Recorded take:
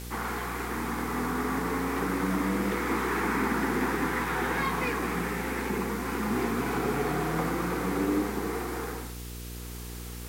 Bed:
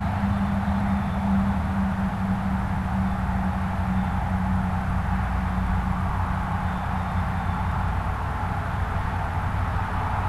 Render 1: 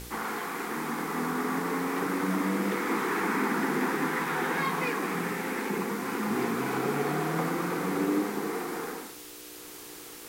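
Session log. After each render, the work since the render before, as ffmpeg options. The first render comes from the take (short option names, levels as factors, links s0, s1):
-af "bandreject=f=60:t=h:w=4,bandreject=f=120:t=h:w=4,bandreject=f=180:t=h:w=4,bandreject=f=240:t=h:w=4"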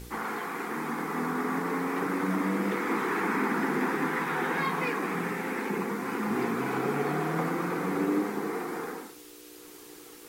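-af "afftdn=nr=6:nf=-45"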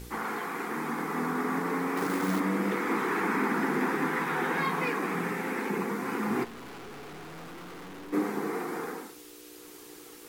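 -filter_complex "[0:a]asettb=1/sr,asplit=3[s0][s1][s2];[s0]atrim=end=1.974[s3];[s1]atrim=start=1.97:end=2.4,asetpts=PTS-STARTPTS,afade=t=in:d=0.004:c=qsin,afade=t=out:st=0.426:d=0.004:c=qsin,acrusher=bits=3:mode=log:mix=0:aa=0.000001[s4];[s2]atrim=start=2.396[s5];[s3][s4]acrossfade=d=0.004:c1=hsin:c2=qsin[s6];[s6][s5]acrossfade=d=0.004:c1=qsin:c2=hsin,asplit=3[s7][s8][s9];[s7]afade=t=out:st=6.43:d=0.02[s10];[s8]aeval=exprs='(tanh(141*val(0)+0.45)-tanh(0.45))/141':c=same,afade=t=in:st=6.43:d=0.02,afade=t=out:st=8.12:d=0.02[s11];[s9]afade=t=in:st=8.12:d=0.02[s12];[s10][s11][s12]amix=inputs=3:normalize=0"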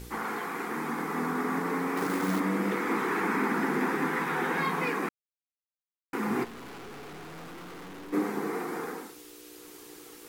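-filter_complex "[0:a]asplit=3[s0][s1][s2];[s0]atrim=end=5.09,asetpts=PTS-STARTPTS,afade=t=out:st=5.086:d=0.004:c=hsin[s3];[s1]atrim=start=5.09:end=6.13,asetpts=PTS-STARTPTS,volume=0[s4];[s2]atrim=start=6.13,asetpts=PTS-STARTPTS,afade=t=in:d=0.004:c=hsin[s5];[s3][s4][s5]concat=n=3:v=0:a=1"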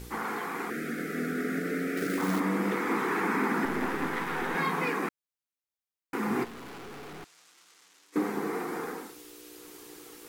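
-filter_complex "[0:a]asettb=1/sr,asplit=3[s0][s1][s2];[s0]atrim=end=0.704[s3];[s1]atrim=start=0.7:end=2.18,asetpts=PTS-STARTPTS,afade=t=in:d=0.004:c=qsin,afade=t=out:st=1.476:d=0.004:c=qsin,asuperstop=centerf=950:order=8:qfactor=1.5[s4];[s2]atrim=start=2.176[s5];[s3][s4]acrossfade=d=0.004:c1=hsin:c2=qsin[s6];[s6][s5]acrossfade=d=0.004:c1=qsin:c2=hsin,asettb=1/sr,asplit=3[s7][s8][s9];[s7]atrim=end=3.654[s10];[s8]atrim=start=3.65:end=4.55,asetpts=PTS-STARTPTS,afade=t=in:d=0.004:c=qsin,afade=t=out:st=0.896:d=0.004:c=qsin,aeval=exprs='if(lt(val(0),0),0.447*val(0),val(0))':c=same[s11];[s9]atrim=start=4.546[s12];[s10][s11]acrossfade=d=0.004:c1=hsin:c2=qsin[s13];[s13][s12]acrossfade=d=0.004:c1=qsin:c2=hsin,asettb=1/sr,asplit=3[s14][s15][s16];[s14]atrim=end=7.244[s17];[s15]atrim=start=7.24:end=8.16,asetpts=PTS-STARTPTS,afade=t=in:d=0.004:c=qsin,afade=t=out:st=0.916:d=0.004:c=qsin,bandpass=f=6900:t=q:w=1.3[s18];[s16]atrim=start=8.156[s19];[s17][s18]acrossfade=d=0.004:c1=hsin:c2=qsin[s20];[s20][s19]acrossfade=d=0.004:c1=qsin:c2=hsin"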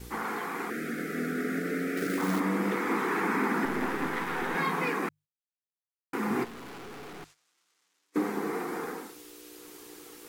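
-af "bandreject=f=50:t=h:w=6,bandreject=f=100:t=h:w=6,bandreject=f=150:t=h:w=6,agate=range=0.2:threshold=0.00224:ratio=16:detection=peak"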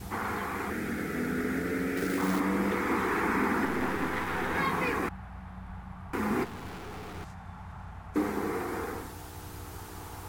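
-filter_complex "[1:a]volume=0.119[s0];[0:a][s0]amix=inputs=2:normalize=0"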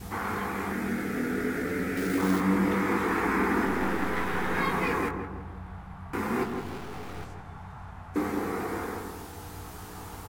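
-filter_complex "[0:a]asplit=2[s0][s1];[s1]adelay=21,volume=0.473[s2];[s0][s2]amix=inputs=2:normalize=0,asplit=2[s3][s4];[s4]adelay=166,lowpass=f=1300:p=1,volume=0.531,asplit=2[s5][s6];[s6]adelay=166,lowpass=f=1300:p=1,volume=0.47,asplit=2[s7][s8];[s8]adelay=166,lowpass=f=1300:p=1,volume=0.47,asplit=2[s9][s10];[s10]adelay=166,lowpass=f=1300:p=1,volume=0.47,asplit=2[s11][s12];[s12]adelay=166,lowpass=f=1300:p=1,volume=0.47,asplit=2[s13][s14];[s14]adelay=166,lowpass=f=1300:p=1,volume=0.47[s15];[s3][s5][s7][s9][s11][s13][s15]amix=inputs=7:normalize=0"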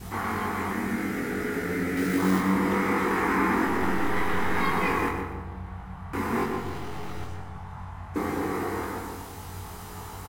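-filter_complex "[0:a]asplit=2[s0][s1];[s1]adelay=22,volume=0.631[s2];[s0][s2]amix=inputs=2:normalize=0,asplit=2[s3][s4];[s4]aecho=0:1:121|242|363|484:0.398|0.143|0.0516|0.0186[s5];[s3][s5]amix=inputs=2:normalize=0"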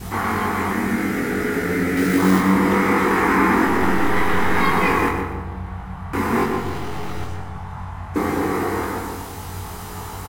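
-af "volume=2.37"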